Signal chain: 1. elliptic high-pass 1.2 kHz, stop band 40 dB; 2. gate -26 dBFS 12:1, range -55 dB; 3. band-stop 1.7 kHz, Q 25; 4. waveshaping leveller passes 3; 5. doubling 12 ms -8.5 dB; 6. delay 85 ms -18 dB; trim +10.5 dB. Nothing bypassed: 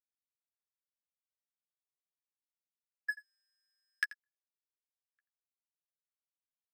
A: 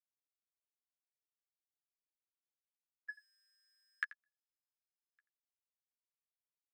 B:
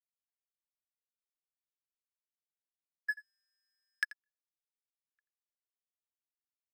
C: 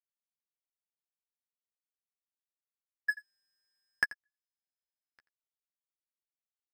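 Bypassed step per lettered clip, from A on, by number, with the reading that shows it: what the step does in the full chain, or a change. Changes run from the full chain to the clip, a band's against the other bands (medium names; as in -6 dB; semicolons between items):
4, crest factor change +6.5 dB; 5, momentary loudness spread change -3 LU; 1, momentary loudness spread change +1 LU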